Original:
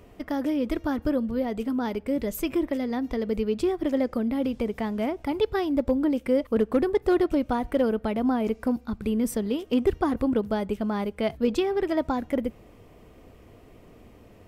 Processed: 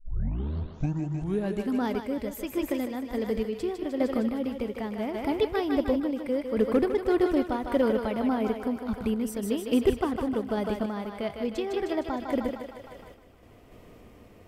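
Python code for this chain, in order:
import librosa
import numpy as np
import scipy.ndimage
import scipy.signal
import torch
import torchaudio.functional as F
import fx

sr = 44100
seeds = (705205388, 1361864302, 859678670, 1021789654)

y = fx.tape_start_head(x, sr, length_s=1.73)
y = fx.echo_thinned(y, sr, ms=154, feedback_pct=68, hz=380.0, wet_db=-5.0)
y = fx.tremolo_random(y, sr, seeds[0], hz=3.5, depth_pct=55)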